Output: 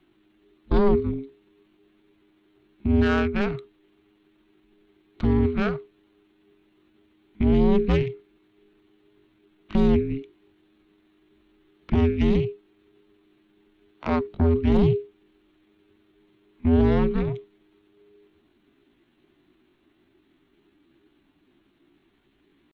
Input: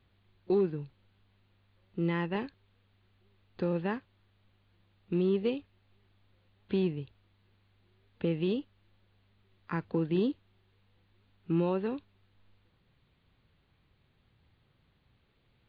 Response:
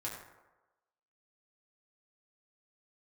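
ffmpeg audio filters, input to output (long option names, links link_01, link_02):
-af "atempo=0.69,aeval=exprs='0.112*(cos(1*acos(clip(val(0)/0.112,-1,1)))-cos(1*PI/2))+0.0398*(cos(4*acos(clip(val(0)/0.112,-1,1)))-cos(4*PI/2))':channel_layout=same,afreqshift=-410,volume=6dB"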